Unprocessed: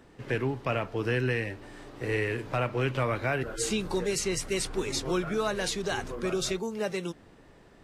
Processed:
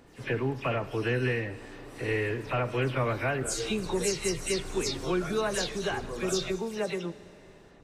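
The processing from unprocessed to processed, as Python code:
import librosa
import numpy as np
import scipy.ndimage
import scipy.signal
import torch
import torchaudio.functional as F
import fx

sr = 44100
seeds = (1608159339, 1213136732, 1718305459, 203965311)

y = fx.spec_delay(x, sr, highs='early', ms=130)
y = fx.rev_schroeder(y, sr, rt60_s=3.0, comb_ms=30, drr_db=15.5)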